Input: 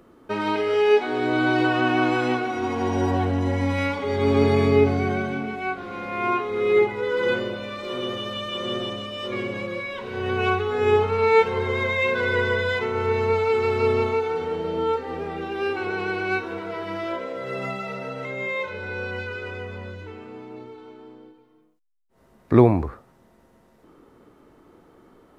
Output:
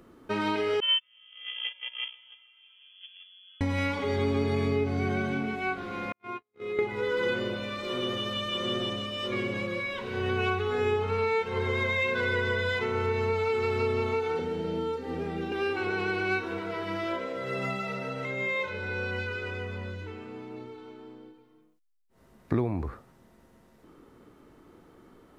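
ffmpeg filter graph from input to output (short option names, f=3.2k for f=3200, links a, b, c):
-filter_complex "[0:a]asettb=1/sr,asplit=3[a][b][c];[a]atrim=end=0.804[d];[b]atrim=start=0.8:end=3.61,asetpts=PTS-STARTPTS,afade=t=in:d=0.004:c=qsin,afade=t=out:st=2.806:d=0.004:c=qsin,agate=range=-34dB:threshold=-18dB:ratio=16:release=100:detection=peak,tiltshelf=f=1.3k:g=3,lowpass=f=3k:t=q:w=0.5098,lowpass=f=3k:t=q:w=0.6013,lowpass=f=3k:t=q:w=0.9,lowpass=f=3k:t=q:w=2.563,afreqshift=-3500[e];[c]atrim=start=3.606[f];[d][e]acrossfade=d=0.004:c1=hsin:c2=qsin[g];[g][f]acrossfade=d=0.004:c1=qsin:c2=hsin,asettb=1/sr,asplit=3[h][i][j];[h]atrim=end=6.124[k];[i]atrim=start=6.12:end=6.79,asetpts=PTS-STARTPTS,afade=t=in:d=0.004:c=qsin,afade=t=out:st=0.666:d=0.004:c=qsin,agate=range=-55dB:threshold=-22dB:ratio=16:release=100:detection=peak,highpass=46,acompressor=threshold=-33dB:ratio=2.5:attack=3.2:release=140:knee=1:detection=peak[l];[j]atrim=start=6.786[m];[k][l]acrossfade=d=0.004:c1=hsin:c2=qsin[n];[n][m]acrossfade=d=0.004:c1=qsin:c2=hsin,asettb=1/sr,asplit=3[o][p][q];[o]atrim=end=14.394[r];[p]atrim=start=14.39:end=15.52,asetpts=PTS-STARTPTS,afade=t=in:d=0.004:c=qsin,afade=t=out:st=1.126:d=0.004:c=qsin,bandreject=f=1.1k:w=8.5,acrossover=split=630|4000[s][t][u];[s]acompressor=threshold=-29dB:ratio=4[v];[t]acompressor=threshold=-39dB:ratio=4[w];[u]acompressor=threshold=-54dB:ratio=4[x];[v][w][x]amix=inputs=3:normalize=0,equalizer=f=210:t=o:w=0.89:g=6[y];[q]atrim=start=15.516[z];[r][y]acrossfade=d=0.004:c1=hsin:c2=qsin[aa];[aa][z]acrossfade=d=0.004:c1=qsin:c2=hsin,equalizer=f=680:t=o:w=2:g=-4,acompressor=threshold=-24dB:ratio=5"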